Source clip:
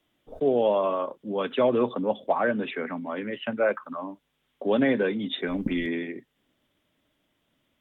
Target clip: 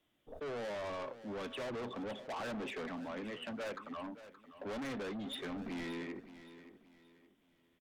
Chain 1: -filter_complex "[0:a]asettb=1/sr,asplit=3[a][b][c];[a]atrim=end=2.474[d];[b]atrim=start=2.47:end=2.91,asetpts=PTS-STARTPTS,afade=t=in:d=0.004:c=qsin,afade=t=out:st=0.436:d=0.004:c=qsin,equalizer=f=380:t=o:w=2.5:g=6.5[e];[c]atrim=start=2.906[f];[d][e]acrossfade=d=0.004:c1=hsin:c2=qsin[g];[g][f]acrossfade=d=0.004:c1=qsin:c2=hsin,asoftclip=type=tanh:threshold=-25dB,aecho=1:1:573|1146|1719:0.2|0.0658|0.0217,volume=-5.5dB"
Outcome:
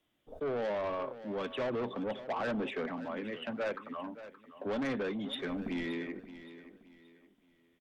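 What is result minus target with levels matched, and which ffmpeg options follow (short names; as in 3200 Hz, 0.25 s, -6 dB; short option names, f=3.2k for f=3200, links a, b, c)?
soft clip: distortion -5 dB
-filter_complex "[0:a]asettb=1/sr,asplit=3[a][b][c];[a]atrim=end=2.474[d];[b]atrim=start=2.47:end=2.91,asetpts=PTS-STARTPTS,afade=t=in:d=0.004:c=qsin,afade=t=out:st=0.436:d=0.004:c=qsin,equalizer=f=380:t=o:w=2.5:g=6.5[e];[c]atrim=start=2.906[f];[d][e]acrossfade=d=0.004:c1=hsin:c2=qsin[g];[g][f]acrossfade=d=0.004:c1=qsin:c2=hsin,asoftclip=type=tanh:threshold=-33.5dB,aecho=1:1:573|1146|1719:0.2|0.0658|0.0217,volume=-5.5dB"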